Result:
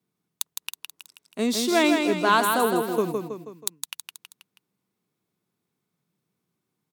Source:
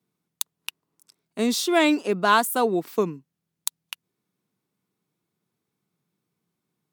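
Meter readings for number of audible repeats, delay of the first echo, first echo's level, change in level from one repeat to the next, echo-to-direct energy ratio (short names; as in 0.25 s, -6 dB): 4, 0.161 s, -5.0 dB, -6.0 dB, -4.0 dB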